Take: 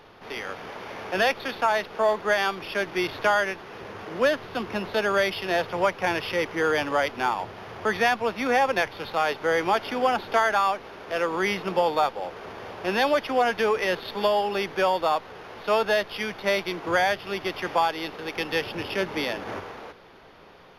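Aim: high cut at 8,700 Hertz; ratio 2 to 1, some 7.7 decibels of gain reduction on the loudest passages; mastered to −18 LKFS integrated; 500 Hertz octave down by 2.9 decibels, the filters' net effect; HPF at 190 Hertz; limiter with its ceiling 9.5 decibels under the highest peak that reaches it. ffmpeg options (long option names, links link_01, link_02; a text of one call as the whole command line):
ffmpeg -i in.wav -af "highpass=190,lowpass=8700,equalizer=frequency=500:width_type=o:gain=-3.5,acompressor=threshold=-33dB:ratio=2,volume=18.5dB,alimiter=limit=-7dB:level=0:latency=1" out.wav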